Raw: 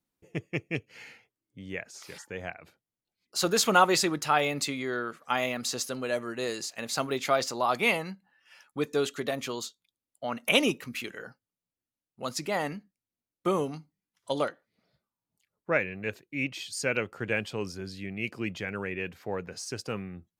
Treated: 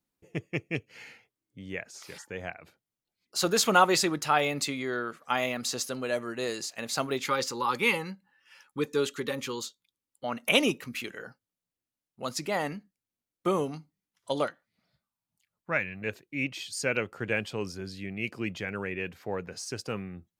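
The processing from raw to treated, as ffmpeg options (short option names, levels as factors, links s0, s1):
-filter_complex "[0:a]asettb=1/sr,asplit=3[s0][s1][s2];[s0]atrim=end=7.264[s3];[s1]atrim=start=7.26:end=10.24,asetpts=PTS-STARTPTS,afade=t=in:d=0.004:c=qsin,afade=t=out:st=2.976:d=0.004:c=qsin,asuperstop=centerf=670:order=20:qfactor=3.4[s4];[s2]atrim=start=10.236[s5];[s3][s4]acrossfade=d=0.004:c1=hsin:c2=qsin[s6];[s6][s5]acrossfade=d=0.004:c1=qsin:c2=hsin,asettb=1/sr,asplit=3[s7][s8][s9];[s7]atrim=end=14.464[s10];[s8]atrim=start=14.46:end=16.02,asetpts=PTS-STARTPTS,afade=t=in:d=0.004:c=qsin,afade=t=out:st=1.556:d=0.004:c=qsin,equalizer=f=420:t=o:w=1:g=-10[s11];[s9]atrim=start=16.016[s12];[s10][s11]acrossfade=d=0.004:c1=hsin:c2=qsin[s13];[s13][s12]acrossfade=d=0.004:c1=qsin:c2=hsin"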